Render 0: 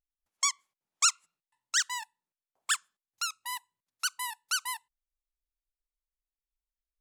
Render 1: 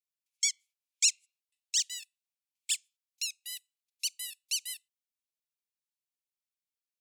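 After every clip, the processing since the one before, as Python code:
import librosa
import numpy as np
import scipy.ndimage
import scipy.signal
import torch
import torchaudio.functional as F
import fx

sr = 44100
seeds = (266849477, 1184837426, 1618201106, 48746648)

y = scipy.signal.sosfilt(scipy.signal.ellip(4, 1.0, 40, 2300.0, 'highpass', fs=sr, output='sos'), x)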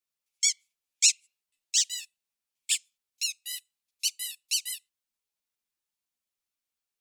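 y = fx.ensemble(x, sr)
y = y * 10.0 ** (7.5 / 20.0)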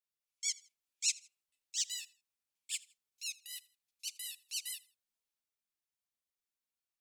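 y = fx.transient(x, sr, attack_db=-10, sustain_db=3)
y = fx.echo_feedback(y, sr, ms=81, feedback_pct=35, wet_db=-22.5)
y = y * 10.0 ** (-7.0 / 20.0)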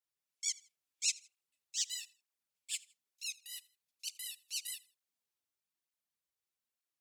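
y = fx.flanger_cancel(x, sr, hz=1.1, depth_ms=5.6)
y = y * 10.0 ** (2.5 / 20.0)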